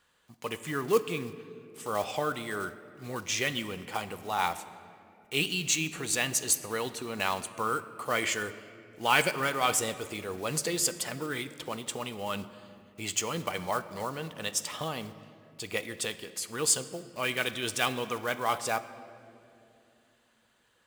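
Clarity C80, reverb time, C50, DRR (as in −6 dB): 14.5 dB, 2.7 s, 14.0 dB, 12.0 dB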